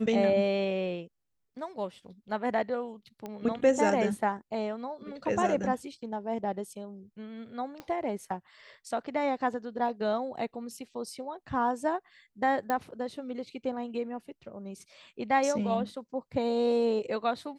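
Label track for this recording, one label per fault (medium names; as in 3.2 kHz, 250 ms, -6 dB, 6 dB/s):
3.260000	3.260000	pop -25 dBFS
7.800000	7.800000	pop -26 dBFS
12.700000	12.700000	pop -17 dBFS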